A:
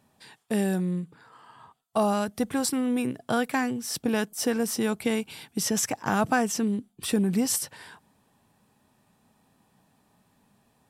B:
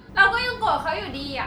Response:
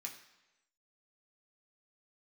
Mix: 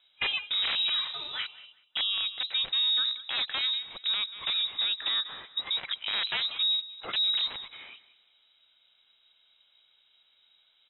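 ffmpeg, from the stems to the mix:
-filter_complex "[0:a]volume=0dB,asplit=3[a][b][c];[b]volume=-18dB[d];[1:a]volume=-6dB,asplit=2[e][f];[f]volume=-21dB[g];[c]apad=whole_len=64656[h];[e][h]sidechaingate=range=-36dB:threshold=-54dB:ratio=16:detection=peak[i];[d][g]amix=inputs=2:normalize=0,aecho=0:1:189|378|567|756:1|0.28|0.0784|0.022[j];[a][i][j]amix=inputs=3:normalize=0,aeval=exprs='(mod(6.68*val(0)+1,2)-1)/6.68':c=same,lowpass=f=3.4k:t=q:w=0.5098,lowpass=f=3.4k:t=q:w=0.6013,lowpass=f=3.4k:t=q:w=0.9,lowpass=f=3.4k:t=q:w=2.563,afreqshift=-4000,alimiter=limit=-20.5dB:level=0:latency=1:release=23"

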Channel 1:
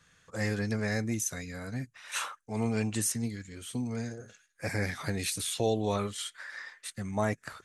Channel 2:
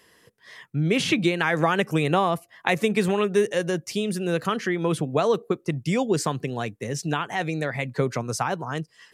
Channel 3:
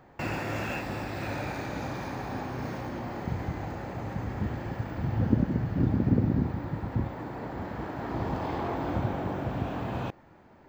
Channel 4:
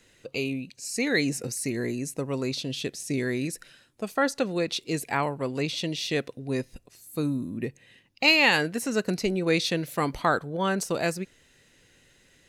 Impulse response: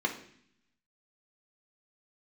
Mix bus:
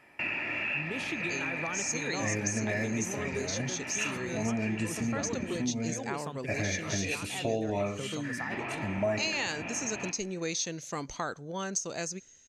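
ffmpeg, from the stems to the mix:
-filter_complex "[0:a]equalizer=f=630:t=o:w=0.67:g=10,equalizer=f=2.5k:t=o:w=0.67:g=11,equalizer=f=10k:t=o:w=0.67:g=-5,adelay=1850,volume=-1dB,asplit=2[a][b];[b]volume=-8.5dB[c];[1:a]volume=-13.5dB[d];[2:a]lowpass=f=2.4k:t=q:w=5.1,aemphasis=mode=production:type=riaa,bandreject=f=1.5k:w=19,volume=-4dB,asplit=3[e][f][g];[e]atrim=end=5.65,asetpts=PTS-STARTPTS,afade=t=out:st=5.646:d=0.004:c=hsin[h];[f]atrim=start=5.65:end=8.51,asetpts=PTS-STARTPTS,volume=0[i];[g]atrim=start=8.51,asetpts=PTS-STARTPTS,afade=t=in:d=0.004:c=hsin[j];[h][i][j]concat=n=3:v=0:a=1,asplit=2[k][l];[l]volume=-12dB[m];[3:a]lowpass=f=6.4k:t=q:w=15,agate=range=-33dB:threshold=-48dB:ratio=3:detection=peak,adelay=950,volume=-8dB[n];[4:a]atrim=start_sample=2205[o];[c][m]amix=inputs=2:normalize=0[p];[p][o]afir=irnorm=-1:irlink=0[q];[a][d][k][n][q]amix=inputs=5:normalize=0,acompressor=threshold=-32dB:ratio=2"

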